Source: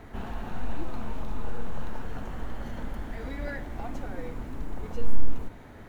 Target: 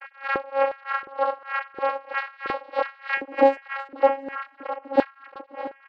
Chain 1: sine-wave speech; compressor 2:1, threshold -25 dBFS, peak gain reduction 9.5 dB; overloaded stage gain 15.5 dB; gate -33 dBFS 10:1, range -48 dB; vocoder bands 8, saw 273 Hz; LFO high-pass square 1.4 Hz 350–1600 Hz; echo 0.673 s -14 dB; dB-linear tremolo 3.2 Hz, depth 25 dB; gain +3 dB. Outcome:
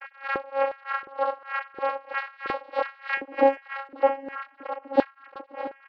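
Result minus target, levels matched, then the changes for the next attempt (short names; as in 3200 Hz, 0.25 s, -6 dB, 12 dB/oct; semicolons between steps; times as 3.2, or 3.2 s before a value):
compressor: peak gain reduction +3 dB
change: compressor 2:1, threshold -18.5 dBFS, peak gain reduction 6 dB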